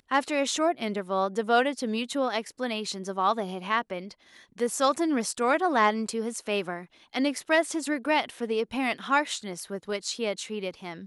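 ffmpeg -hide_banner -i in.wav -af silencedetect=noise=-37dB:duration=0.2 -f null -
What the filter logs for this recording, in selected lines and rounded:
silence_start: 4.12
silence_end: 4.58 | silence_duration: 0.47
silence_start: 6.83
silence_end: 7.13 | silence_duration: 0.30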